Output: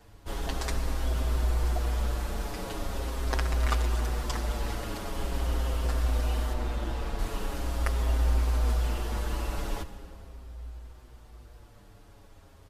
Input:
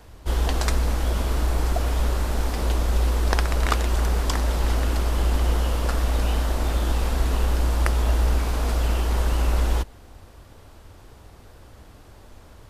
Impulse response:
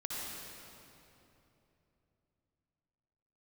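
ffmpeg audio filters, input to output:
-filter_complex "[0:a]asettb=1/sr,asplit=3[a][b][c];[a]atrim=end=6.534[d];[b]atrim=start=6.53:end=7.19,asetpts=PTS-STARTPTS,afade=t=in:d=0.004:c=qsin,afade=t=out:st=0.656:d=0.004:c=qsin,highshelf=f=5.4k:g=-10[e];[c]atrim=start=7.186[f];[d][e]acrossfade=d=0.004:c1=hsin:c2=qsin[g];[g][f]acrossfade=d=0.004:c1=qsin:c2=hsin,asplit=2[h][i];[1:a]atrim=start_sample=2205[j];[i][j]afir=irnorm=-1:irlink=0,volume=-11.5dB[k];[h][k]amix=inputs=2:normalize=0,asplit=2[l][m];[m]adelay=6.6,afreqshift=-0.42[n];[l][n]amix=inputs=2:normalize=1,volume=-5.5dB"

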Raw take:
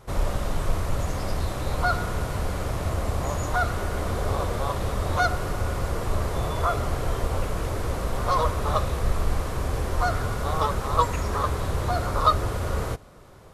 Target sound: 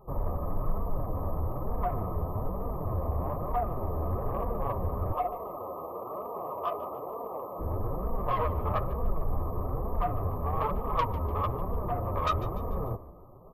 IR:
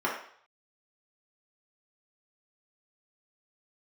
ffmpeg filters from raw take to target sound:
-filter_complex "[0:a]asettb=1/sr,asplit=3[a][b][c];[a]atrim=end=5.124[d];[b]atrim=start=5.12:end=7.59,asetpts=PTS-STARTPTS,afade=t=in:d=0.004:c=qsin,afade=t=out:st=2.466:d=0.004:c=qsin,highpass=420[e];[c]atrim=start=7.586[f];[d][e]acrossfade=d=0.004:c1=hsin:c2=qsin[g];[g][f]acrossfade=d=0.004:c1=qsin:c2=hsin,afftfilt=real='re*(1-between(b*sr/4096,1300,12000))':imag='im*(1-between(b*sr/4096,1300,12000))':win_size=4096:overlap=0.75,asoftclip=type=tanh:threshold=-17.5dB,flanger=delay=4.2:depth=8:regen=8:speed=1.1:shape=sinusoidal,asplit=5[h][i][j][k][l];[i]adelay=147,afreqshift=-46,volume=-16.5dB[m];[j]adelay=294,afreqshift=-92,volume=-23.4dB[n];[k]adelay=441,afreqshift=-138,volume=-30.4dB[o];[l]adelay=588,afreqshift=-184,volume=-37.3dB[p];[h][m][n][o][p]amix=inputs=5:normalize=0"

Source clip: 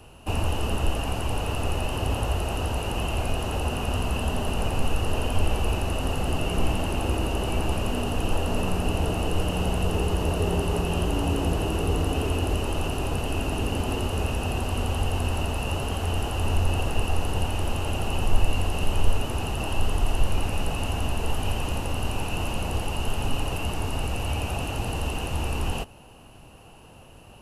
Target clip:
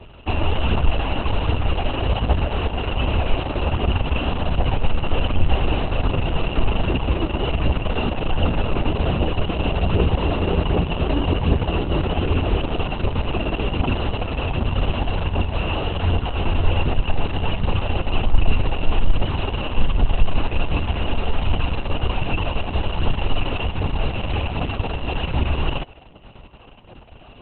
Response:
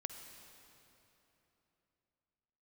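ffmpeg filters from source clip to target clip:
-af "aphaser=in_gain=1:out_gain=1:delay=3.7:decay=0.4:speed=1.3:type=triangular,acontrast=51,volume=-1dB" -ar 48000 -c:a libopus -b:a 6k

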